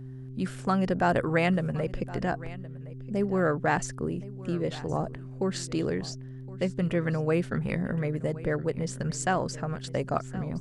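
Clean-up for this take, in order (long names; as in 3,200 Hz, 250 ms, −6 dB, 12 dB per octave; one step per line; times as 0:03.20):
hum removal 129.9 Hz, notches 3
echo removal 1,067 ms −18.5 dB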